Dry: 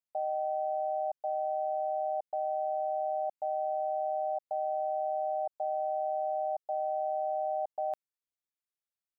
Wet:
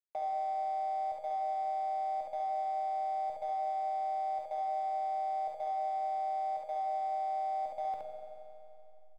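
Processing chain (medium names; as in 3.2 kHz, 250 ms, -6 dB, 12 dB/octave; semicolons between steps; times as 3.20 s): tone controls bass +2 dB, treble -8 dB; hysteresis with a dead band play -42.5 dBFS; early reflections 53 ms -9.5 dB, 69 ms -3 dB; reverberation RT60 1.9 s, pre-delay 3 ms, DRR 3 dB; three bands compressed up and down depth 40%; trim -5 dB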